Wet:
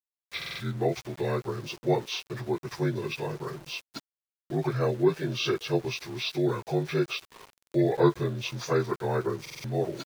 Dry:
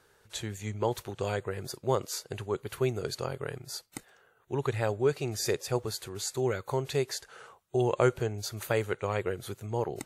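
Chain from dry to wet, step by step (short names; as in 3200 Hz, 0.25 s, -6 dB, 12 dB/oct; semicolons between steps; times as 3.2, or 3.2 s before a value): inharmonic rescaling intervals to 81%; sample gate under -47.5 dBFS; stuck buffer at 0.37/7.51/9.41, samples 2048, times 4; gain +4 dB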